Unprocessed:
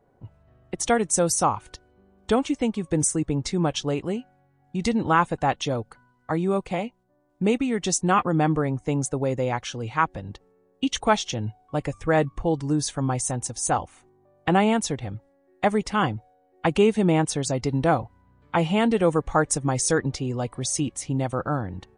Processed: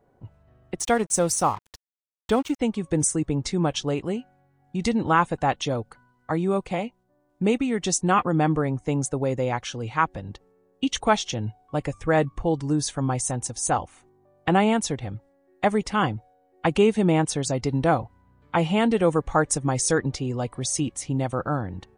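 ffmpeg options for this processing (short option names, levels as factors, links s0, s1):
-filter_complex "[0:a]asplit=3[s0][s1][s2];[s0]afade=t=out:st=0.78:d=0.02[s3];[s1]aeval=exprs='sgn(val(0))*max(abs(val(0))-0.00891,0)':c=same,afade=t=in:st=0.78:d=0.02,afade=t=out:st=2.59:d=0.02[s4];[s2]afade=t=in:st=2.59:d=0.02[s5];[s3][s4][s5]amix=inputs=3:normalize=0"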